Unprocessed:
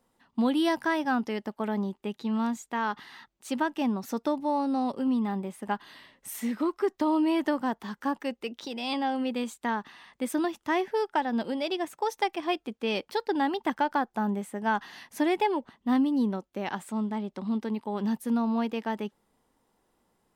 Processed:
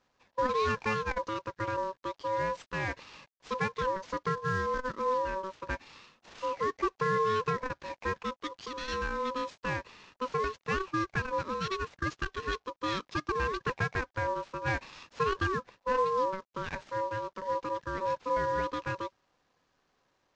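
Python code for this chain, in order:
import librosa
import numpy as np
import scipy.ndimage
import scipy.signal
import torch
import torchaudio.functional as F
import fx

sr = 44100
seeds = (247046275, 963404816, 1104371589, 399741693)

y = fx.cvsd(x, sr, bps=32000)
y = y * np.sin(2.0 * np.pi * 760.0 * np.arange(len(y)) / sr)
y = fx.transformer_sat(y, sr, knee_hz=260.0)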